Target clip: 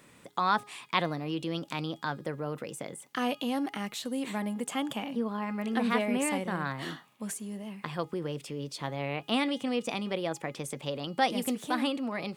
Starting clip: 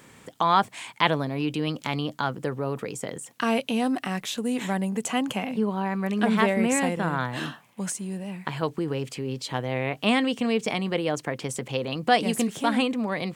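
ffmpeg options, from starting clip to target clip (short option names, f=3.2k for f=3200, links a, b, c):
-af "asetrate=47628,aresample=44100,bandreject=f=414.2:t=h:w=4,bandreject=f=828.4:t=h:w=4,bandreject=f=1.2426k:t=h:w=4,bandreject=f=1.6568k:t=h:w=4,bandreject=f=2.071k:t=h:w=4,bandreject=f=2.4852k:t=h:w=4,bandreject=f=2.8994k:t=h:w=4,bandreject=f=3.3136k:t=h:w=4,bandreject=f=3.7278k:t=h:w=4,bandreject=f=4.142k:t=h:w=4,bandreject=f=4.5562k:t=h:w=4,bandreject=f=4.9704k:t=h:w=4,bandreject=f=5.3846k:t=h:w=4,bandreject=f=5.7988k:t=h:w=4,bandreject=f=6.213k:t=h:w=4,bandreject=f=6.6272k:t=h:w=4,bandreject=f=7.0414k:t=h:w=4,volume=-6dB"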